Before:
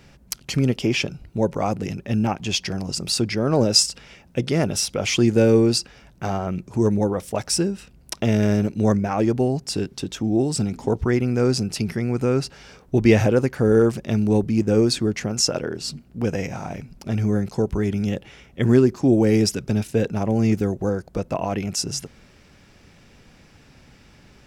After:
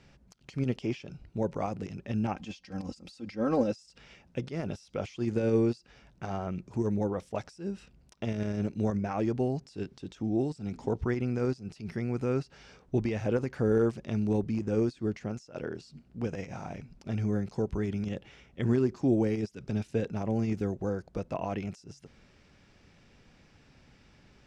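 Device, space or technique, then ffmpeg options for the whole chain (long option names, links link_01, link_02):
de-esser from a sidechain: -filter_complex "[0:a]asettb=1/sr,asplit=3[link_01][link_02][link_03];[link_01]atrim=end=2.354[link_04];[link_02]atrim=start=2.35:end=3.72,asetpts=PTS-STARTPTS,afade=type=in:duration=0.004:curve=qsin,afade=type=out:start_time=1.366:duration=0.004:curve=qsin,aecho=1:1:3.8:0.84,atrim=end_sample=60417[link_05];[link_03]atrim=start=3.716[link_06];[link_04][link_05]acrossfade=duration=0.004:curve1=hsin:curve2=qsin[link_07];[link_07][link_06]acrossfade=duration=0.004:curve1=qsin:curve2=hsin,asplit=2[link_08][link_09];[link_09]highpass=frequency=4300:width=0.5412,highpass=frequency=4300:width=1.3066,apad=whole_len=1078857[link_10];[link_08][link_10]sidechaincompress=threshold=-42dB:ratio=16:attack=1.9:release=72,lowpass=6800,volume=-8.5dB"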